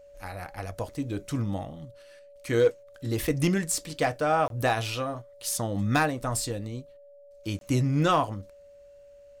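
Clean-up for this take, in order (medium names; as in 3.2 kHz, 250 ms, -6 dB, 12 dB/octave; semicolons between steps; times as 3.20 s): clip repair -14 dBFS; band-stop 570 Hz, Q 30; interpolate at 4.48/7.59 s, 22 ms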